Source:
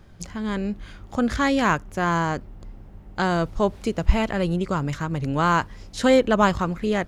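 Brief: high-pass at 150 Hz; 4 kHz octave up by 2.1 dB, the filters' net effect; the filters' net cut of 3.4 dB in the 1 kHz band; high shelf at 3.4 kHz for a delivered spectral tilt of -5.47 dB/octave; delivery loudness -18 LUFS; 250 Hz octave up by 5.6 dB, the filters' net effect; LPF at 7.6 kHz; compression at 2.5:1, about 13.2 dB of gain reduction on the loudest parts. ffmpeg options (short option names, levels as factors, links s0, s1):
-af "highpass=150,lowpass=7600,equalizer=f=250:t=o:g=8,equalizer=f=1000:t=o:g=-4.5,highshelf=f=3400:g=-4,equalizer=f=4000:t=o:g=6,acompressor=threshold=0.0316:ratio=2.5,volume=4.22"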